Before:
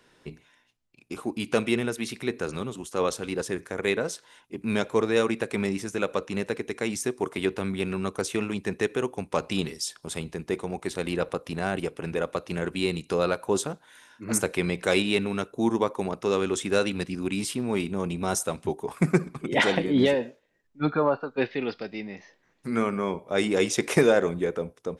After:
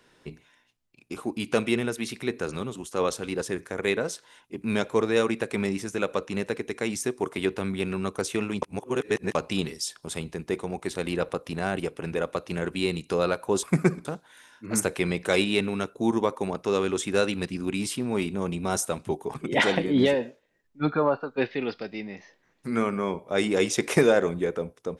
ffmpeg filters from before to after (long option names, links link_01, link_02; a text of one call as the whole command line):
ffmpeg -i in.wav -filter_complex "[0:a]asplit=6[link_01][link_02][link_03][link_04][link_05][link_06];[link_01]atrim=end=8.622[link_07];[link_02]atrim=start=8.618:end=9.352,asetpts=PTS-STARTPTS,areverse[link_08];[link_03]atrim=start=9.348:end=13.632[link_09];[link_04]atrim=start=18.918:end=19.342[link_10];[link_05]atrim=start=13.628:end=18.922[link_11];[link_06]atrim=start=19.338[link_12];[link_07][link_08]acrossfade=duration=0.004:curve1=hsin:curve2=hsin[link_13];[link_13][link_09]acrossfade=duration=0.004:curve1=hsin:curve2=hsin[link_14];[link_14][link_10]acrossfade=duration=0.004:curve1=hsin:curve2=hsin[link_15];[link_15][link_11]acrossfade=duration=0.004:curve1=hsin:curve2=hsin[link_16];[link_16][link_12]acrossfade=duration=0.004:curve1=hsin:curve2=hsin" out.wav